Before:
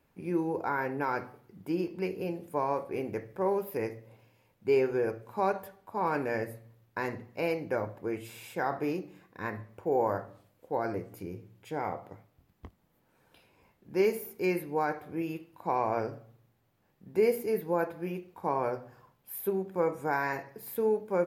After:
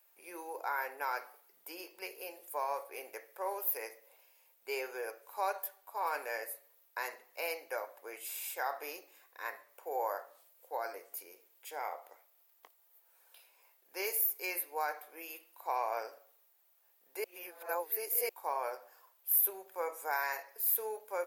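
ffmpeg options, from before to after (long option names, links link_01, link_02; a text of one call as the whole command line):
ffmpeg -i in.wav -filter_complex "[0:a]asplit=3[link_01][link_02][link_03];[link_01]atrim=end=17.242[link_04];[link_02]atrim=start=17.238:end=18.292,asetpts=PTS-STARTPTS,areverse[link_05];[link_03]atrim=start=18.288[link_06];[link_04][link_05]acrossfade=duration=0.004:curve1=hsin:curve2=hsin[link_07];[link_07][link_06]acrossfade=duration=0.004:curve1=hsin:curve2=hsin,highpass=frequency=550:width=0.5412,highpass=frequency=550:width=1.3066,aemphasis=mode=production:type=75fm,volume=-4dB" out.wav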